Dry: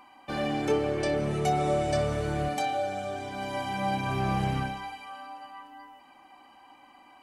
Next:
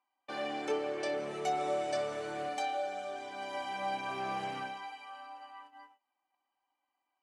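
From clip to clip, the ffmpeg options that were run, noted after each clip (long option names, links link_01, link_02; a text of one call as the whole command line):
ffmpeg -i in.wav -af "highpass=390,agate=range=-25dB:threshold=-48dB:ratio=16:detection=peak,lowpass=8400,volume=-5dB" out.wav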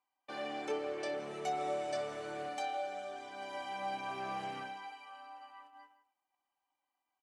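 ffmpeg -i in.wav -filter_complex "[0:a]asplit=2[link_01][link_02];[link_02]adelay=160,highpass=300,lowpass=3400,asoftclip=type=hard:threshold=-31dB,volume=-13dB[link_03];[link_01][link_03]amix=inputs=2:normalize=0,volume=-3.5dB" out.wav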